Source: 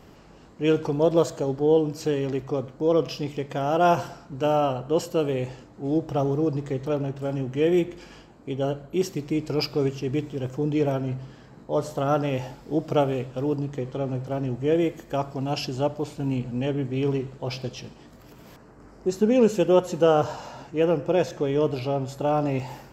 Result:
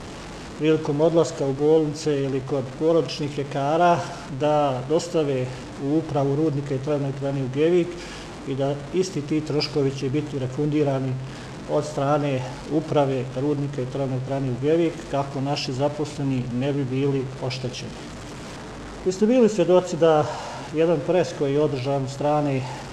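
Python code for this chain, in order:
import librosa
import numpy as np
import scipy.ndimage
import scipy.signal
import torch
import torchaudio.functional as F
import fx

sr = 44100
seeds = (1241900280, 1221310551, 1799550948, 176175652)

y = x + 0.5 * 10.0 ** (-33.0 / 20.0) * np.sign(x)
y = scipy.signal.sosfilt(scipy.signal.butter(4, 8500.0, 'lowpass', fs=sr, output='sos'), y)
y = y * 10.0 ** (1.0 / 20.0)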